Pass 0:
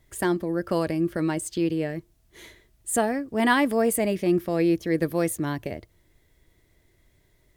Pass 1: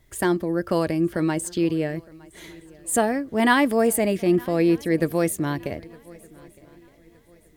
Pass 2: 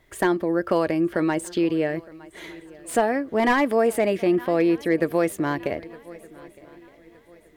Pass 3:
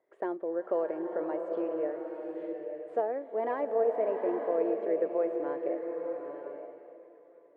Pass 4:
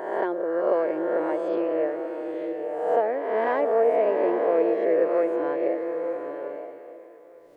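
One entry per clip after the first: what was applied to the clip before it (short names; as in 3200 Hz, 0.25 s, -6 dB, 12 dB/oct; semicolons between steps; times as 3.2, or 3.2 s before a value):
swung echo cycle 1.216 s, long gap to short 3:1, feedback 31%, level -24 dB; gain +2.5 dB
compressor 2:1, threshold -22 dBFS, peak gain reduction 5.5 dB; tone controls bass -10 dB, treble -10 dB; slew limiter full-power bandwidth 110 Hz; gain +5.5 dB
ladder band-pass 580 Hz, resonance 45%; bloom reverb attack 0.88 s, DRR 3.5 dB
spectral swells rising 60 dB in 1.10 s; high shelf 2100 Hz +9 dB; gain +4.5 dB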